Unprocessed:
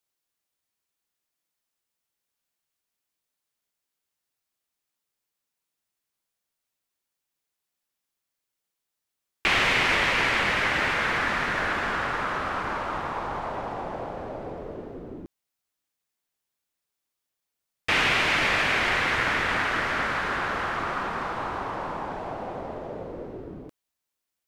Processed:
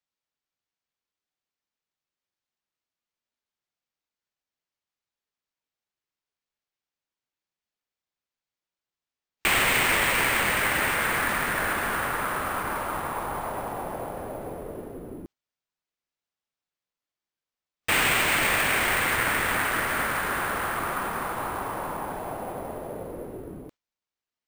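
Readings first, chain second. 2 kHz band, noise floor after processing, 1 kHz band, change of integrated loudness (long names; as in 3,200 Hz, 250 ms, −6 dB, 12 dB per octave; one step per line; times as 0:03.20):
−0.5 dB, below −85 dBFS, 0.0 dB, 0.0 dB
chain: noise reduction from a noise print of the clip's start 10 dB
bad sample-rate conversion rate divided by 4×, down none, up hold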